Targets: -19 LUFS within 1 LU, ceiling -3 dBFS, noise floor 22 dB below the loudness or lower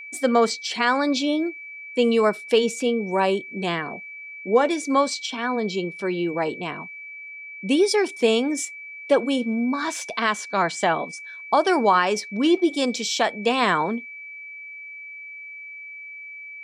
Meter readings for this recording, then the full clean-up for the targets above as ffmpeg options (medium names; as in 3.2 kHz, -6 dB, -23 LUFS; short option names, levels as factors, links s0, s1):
steady tone 2.3 kHz; tone level -36 dBFS; loudness -22.5 LUFS; peak level -7.0 dBFS; loudness target -19.0 LUFS
-> -af "bandreject=f=2300:w=30"
-af "volume=1.5"